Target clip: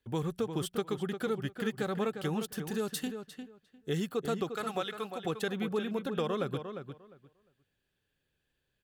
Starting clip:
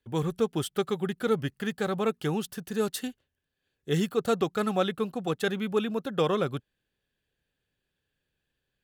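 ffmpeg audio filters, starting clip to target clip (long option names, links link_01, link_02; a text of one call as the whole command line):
ffmpeg -i in.wav -filter_complex "[0:a]asettb=1/sr,asplit=3[link_01][link_02][link_03];[link_01]atrim=end=4.534[link_04];[link_02]atrim=start=4.53:end=5.25,asetpts=PTS-STARTPTS,afade=type=in:duration=0.004:curve=qsin,afade=type=out:start_time=0.716:duration=0.004:curve=qsin,highpass=frequency=970:poles=1[link_05];[link_03]atrim=start=5.246[link_06];[link_04][link_05]acrossfade=duration=0.004:curve1=hsin:curve2=qsin[link_07];[link_07][link_06]acrossfade=duration=0.004:curve1=qsin:curve2=hsin,acompressor=threshold=-31dB:ratio=3,asplit=2[link_08][link_09];[link_09]adelay=352,lowpass=frequency=2900:poles=1,volume=-8dB,asplit=2[link_10][link_11];[link_11]adelay=352,lowpass=frequency=2900:poles=1,volume=0.18,asplit=2[link_12][link_13];[link_13]adelay=352,lowpass=frequency=2900:poles=1,volume=0.18[link_14];[link_08][link_10][link_12][link_14]amix=inputs=4:normalize=0" out.wav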